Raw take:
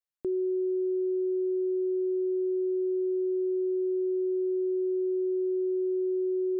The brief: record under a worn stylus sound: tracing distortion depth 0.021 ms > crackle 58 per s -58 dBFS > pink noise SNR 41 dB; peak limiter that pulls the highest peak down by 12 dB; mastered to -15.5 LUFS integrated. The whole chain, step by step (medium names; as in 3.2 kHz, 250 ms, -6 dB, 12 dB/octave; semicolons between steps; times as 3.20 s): peak limiter -37 dBFS; tracing distortion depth 0.021 ms; crackle 58 per s -58 dBFS; pink noise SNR 41 dB; trim +25.5 dB